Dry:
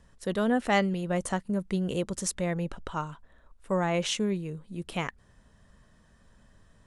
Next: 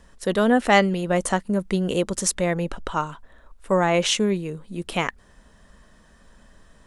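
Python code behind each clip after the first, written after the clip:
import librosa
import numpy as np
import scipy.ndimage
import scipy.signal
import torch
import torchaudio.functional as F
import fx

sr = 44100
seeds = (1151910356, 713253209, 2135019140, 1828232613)

y = fx.peak_eq(x, sr, hz=110.0, db=-11.0, octaves=1.0)
y = y * 10.0 ** (8.5 / 20.0)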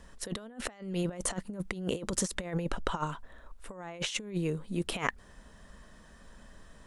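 y = fx.over_compress(x, sr, threshold_db=-27.0, ratio=-0.5)
y = y * 10.0 ** (-6.5 / 20.0)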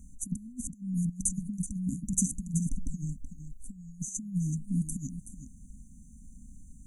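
y = fx.brickwall_bandstop(x, sr, low_hz=290.0, high_hz=5900.0)
y = y + 10.0 ** (-11.0 / 20.0) * np.pad(y, (int(377 * sr / 1000.0), 0))[:len(y)]
y = y * 10.0 ** (4.5 / 20.0)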